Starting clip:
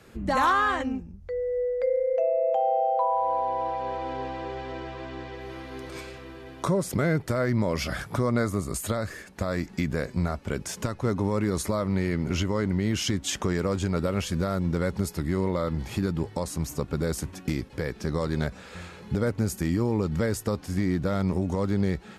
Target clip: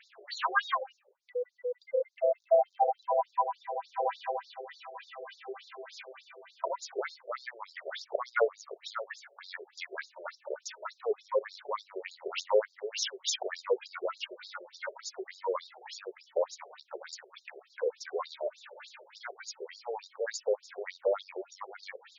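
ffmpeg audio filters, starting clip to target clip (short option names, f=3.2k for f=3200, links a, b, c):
-af "aphaser=in_gain=1:out_gain=1:delay=3.4:decay=0.58:speed=0.24:type=sinusoidal,afftfilt=real='re*between(b*sr/1024,500*pow(5200/500,0.5+0.5*sin(2*PI*3.4*pts/sr))/1.41,500*pow(5200/500,0.5+0.5*sin(2*PI*3.4*pts/sr))*1.41)':imag='im*between(b*sr/1024,500*pow(5200/500,0.5+0.5*sin(2*PI*3.4*pts/sr))/1.41,500*pow(5200/500,0.5+0.5*sin(2*PI*3.4*pts/sr))*1.41)':win_size=1024:overlap=0.75"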